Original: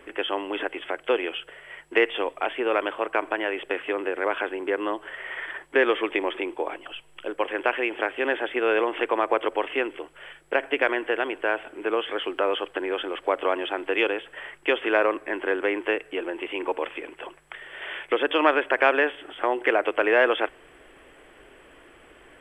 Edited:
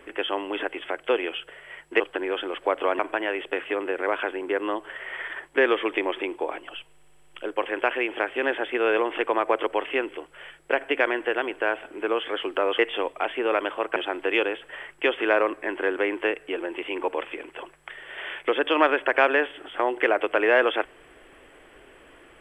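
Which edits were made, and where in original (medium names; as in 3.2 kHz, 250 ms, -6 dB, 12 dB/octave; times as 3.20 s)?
2.00–3.17 s: swap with 12.61–13.60 s
7.10 s: stutter 0.06 s, 7 plays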